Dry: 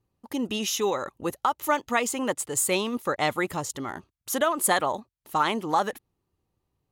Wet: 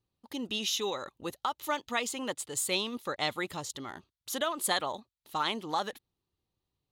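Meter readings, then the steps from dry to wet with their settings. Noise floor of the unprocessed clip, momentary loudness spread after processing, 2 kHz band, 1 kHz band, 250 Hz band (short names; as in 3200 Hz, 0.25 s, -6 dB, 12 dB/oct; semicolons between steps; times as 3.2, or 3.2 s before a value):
-81 dBFS, 11 LU, -6.0 dB, -8.0 dB, -8.5 dB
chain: bell 3800 Hz +11 dB 0.91 oct; gain -8.5 dB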